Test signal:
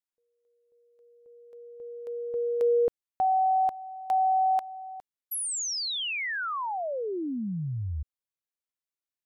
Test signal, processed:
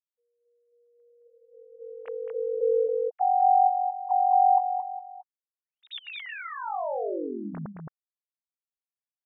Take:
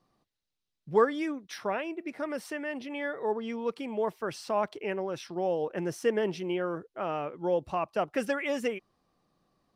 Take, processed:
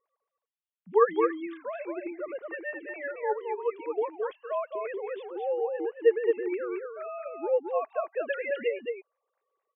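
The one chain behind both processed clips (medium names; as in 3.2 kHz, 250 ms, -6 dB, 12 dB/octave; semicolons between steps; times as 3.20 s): formants replaced by sine waves; on a send: delay 219 ms -4.5 dB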